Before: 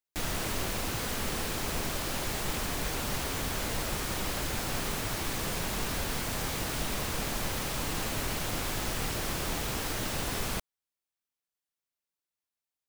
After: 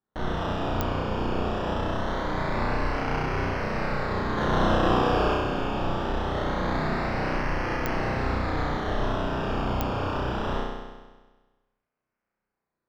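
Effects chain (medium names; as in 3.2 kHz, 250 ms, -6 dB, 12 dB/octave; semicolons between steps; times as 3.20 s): 4.37–5.34 s: resonant high shelf 2.4 kHz +8.5 dB, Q 1.5; decimation with a swept rate 17×, swing 60% 0.23 Hz; distance through air 230 m; flutter echo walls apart 5.6 m, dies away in 1.3 s; clicks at 0.81/7.86/9.81 s, -13 dBFS; trim +1.5 dB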